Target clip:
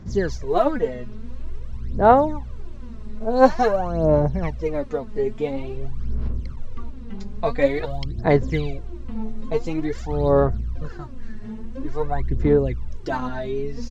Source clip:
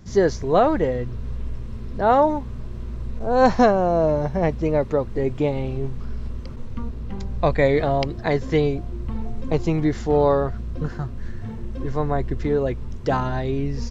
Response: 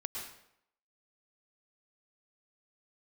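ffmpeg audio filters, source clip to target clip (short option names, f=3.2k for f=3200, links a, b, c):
-filter_complex "[0:a]aresample=22050,aresample=44100,aphaser=in_gain=1:out_gain=1:delay=4.8:decay=0.72:speed=0.48:type=sinusoidal,asettb=1/sr,asplit=3[a][b][c];[a]atrim=end=7.854[d];[b]atrim=start=7.85:end=8.25,asetpts=PTS-STARTPTS,afade=t=in:d=0.004:c=qsin,afade=t=out:st=0.396:d=0.004:c=qsin,acrossover=split=270|3000[e][f][g];[f]acompressor=threshold=-29dB:ratio=6[h];[e][h][g]amix=inputs=3:normalize=0[i];[c]atrim=start=8.246[j];[d][i]acrossfade=d=0.004:c1=hsin:c2=qsin[k];[k][j]acrossfade=d=0.004:c1=qsin:c2=hsin,volume=-6dB"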